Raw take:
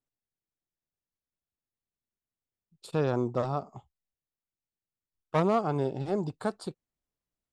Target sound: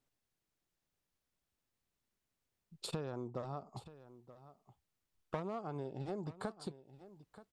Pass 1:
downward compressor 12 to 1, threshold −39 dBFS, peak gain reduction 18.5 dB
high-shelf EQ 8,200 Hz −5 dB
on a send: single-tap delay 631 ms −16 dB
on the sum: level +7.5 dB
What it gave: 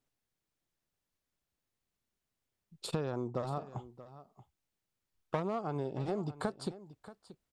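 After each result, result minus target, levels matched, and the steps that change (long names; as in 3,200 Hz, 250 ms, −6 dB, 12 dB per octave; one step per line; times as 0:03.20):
echo 298 ms early; downward compressor: peak gain reduction −6 dB
change: single-tap delay 929 ms −16 dB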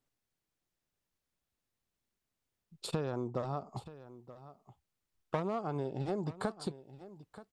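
downward compressor: peak gain reduction −6 dB
change: downward compressor 12 to 1, threshold −45.5 dBFS, peak gain reduction 24.5 dB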